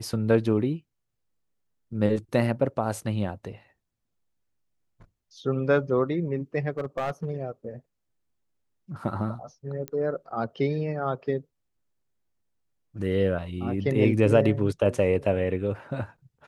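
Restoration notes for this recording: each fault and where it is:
6.78–7.30 s: clipped -23.5 dBFS
9.88 s: pop -18 dBFS

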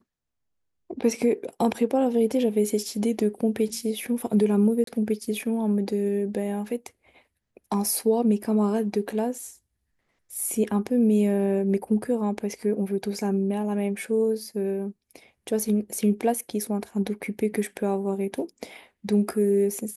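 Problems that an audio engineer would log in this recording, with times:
4.84–4.87 s: dropout 33 ms

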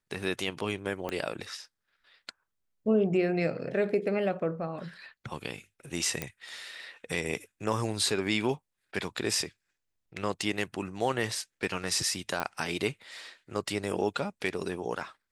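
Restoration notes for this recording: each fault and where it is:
1.09 s: pop -19 dBFS
6.22 s: pop -15 dBFS
12.40 s: pop -16 dBFS

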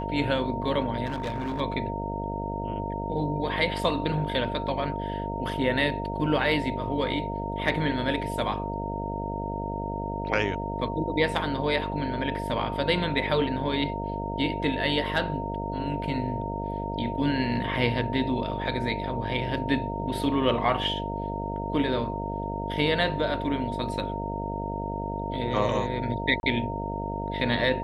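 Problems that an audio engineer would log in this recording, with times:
buzz 50 Hz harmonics 14 -33 dBFS
whine 920 Hz -33 dBFS
1.05–1.61 s: clipped -26.5 dBFS
26.40–26.43 s: dropout 31 ms

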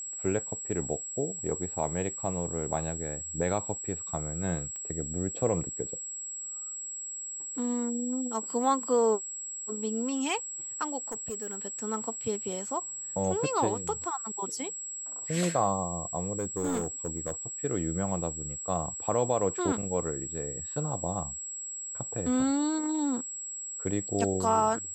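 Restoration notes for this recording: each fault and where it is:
whine 7.7 kHz -36 dBFS
4.76 s: pop -29 dBFS
11.09–11.57 s: clipped -31 dBFS
16.38–17.32 s: clipped -25.5 dBFS

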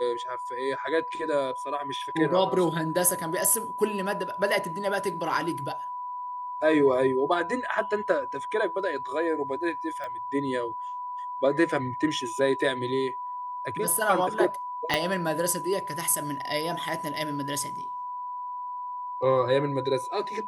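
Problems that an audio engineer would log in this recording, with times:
whine 990 Hz -32 dBFS
10.04 s: pop -24 dBFS
14.94 s: pop -8 dBFS

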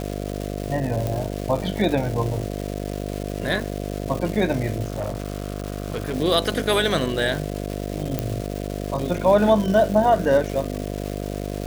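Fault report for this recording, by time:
buzz 50 Hz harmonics 14 -29 dBFS
crackle 580 per s -28 dBFS
1.07 s: pop -12 dBFS
4.83–6.14 s: clipped -21.5 dBFS
8.19 s: pop -8 dBFS

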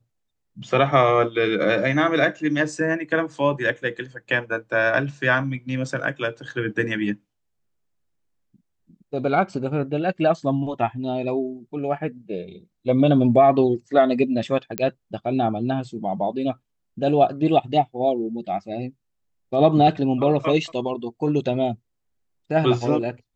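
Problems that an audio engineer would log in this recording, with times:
14.78 s: pop -8 dBFS

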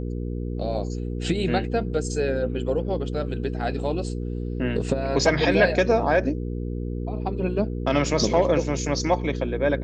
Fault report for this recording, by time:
hum 60 Hz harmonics 8 -29 dBFS

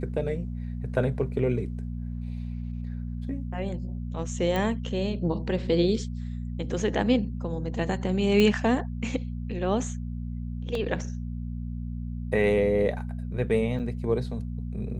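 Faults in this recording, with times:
hum 60 Hz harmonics 4 -33 dBFS
4.56 s: pop -16 dBFS
8.40 s: pop -11 dBFS
10.75 s: dropout 2.3 ms
13.79–13.80 s: dropout 6.9 ms

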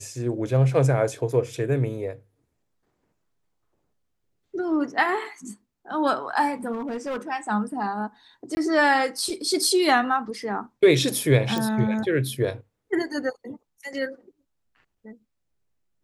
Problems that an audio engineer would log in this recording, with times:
6.72–7.17 s: clipped -25.5 dBFS
8.55–8.57 s: dropout 20 ms
11.58 s: pop

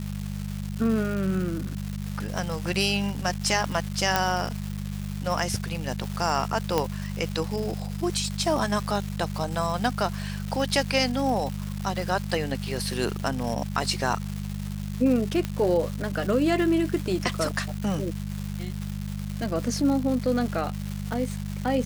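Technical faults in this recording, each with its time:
crackle 480 per s -31 dBFS
hum 50 Hz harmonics 4 -32 dBFS
4.16 s: pop -5 dBFS
6.78 s: pop -9 dBFS
15.45 s: pop -14 dBFS

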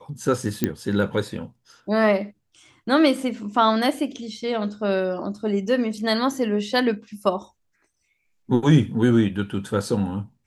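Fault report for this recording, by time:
0.64 s: pop -7 dBFS

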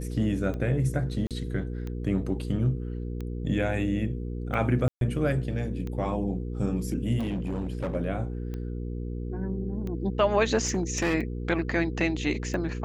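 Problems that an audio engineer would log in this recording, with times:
hum 60 Hz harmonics 8 -33 dBFS
tick 45 rpm -24 dBFS
1.27–1.31 s: dropout 37 ms
4.88–5.01 s: dropout 132 ms
7.18–7.96 s: clipped -26 dBFS
10.65–11.15 s: clipped -21 dBFS

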